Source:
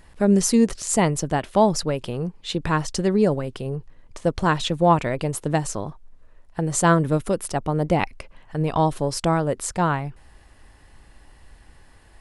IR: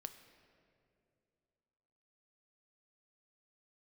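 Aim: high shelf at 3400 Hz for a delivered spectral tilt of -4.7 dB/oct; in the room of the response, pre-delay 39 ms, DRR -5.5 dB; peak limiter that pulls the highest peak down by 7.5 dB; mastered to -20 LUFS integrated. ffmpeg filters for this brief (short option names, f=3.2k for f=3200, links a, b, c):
-filter_complex "[0:a]highshelf=f=3.4k:g=6.5,alimiter=limit=-11dB:level=0:latency=1,asplit=2[a][b];[1:a]atrim=start_sample=2205,adelay=39[c];[b][c]afir=irnorm=-1:irlink=0,volume=10dB[d];[a][d]amix=inputs=2:normalize=0,volume=-3.5dB"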